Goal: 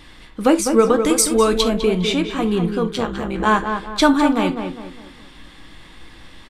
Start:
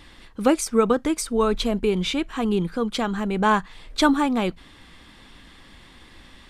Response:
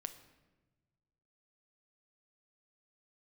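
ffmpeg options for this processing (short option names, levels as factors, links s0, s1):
-filter_complex "[0:a]asplit=3[s0][s1][s2];[s0]afade=t=out:st=1.03:d=0.02[s3];[s1]highshelf=f=3500:g=11,afade=t=in:st=1.03:d=0.02,afade=t=out:st=1.6:d=0.02[s4];[s2]afade=t=in:st=1.6:d=0.02[s5];[s3][s4][s5]amix=inputs=3:normalize=0,asplit=3[s6][s7][s8];[s6]afade=t=out:st=2.9:d=0.02[s9];[s7]tremolo=f=140:d=0.919,afade=t=in:st=2.9:d=0.02,afade=t=out:st=3.45:d=0.02[s10];[s8]afade=t=in:st=3.45:d=0.02[s11];[s9][s10][s11]amix=inputs=3:normalize=0,asplit=2[s12][s13];[s13]adelay=18,volume=0.266[s14];[s12][s14]amix=inputs=2:normalize=0,asplit=2[s15][s16];[s16]adelay=203,lowpass=f=2200:p=1,volume=0.473,asplit=2[s17][s18];[s18]adelay=203,lowpass=f=2200:p=1,volume=0.39,asplit=2[s19][s20];[s20]adelay=203,lowpass=f=2200:p=1,volume=0.39,asplit=2[s21][s22];[s22]adelay=203,lowpass=f=2200:p=1,volume=0.39,asplit=2[s23][s24];[s24]adelay=203,lowpass=f=2200:p=1,volume=0.39[s25];[s15][s17][s19][s21][s23][s25]amix=inputs=6:normalize=0[s26];[1:a]atrim=start_sample=2205,afade=t=out:st=0.13:d=0.01,atrim=end_sample=6174[s27];[s26][s27]afir=irnorm=-1:irlink=0,volume=2.11"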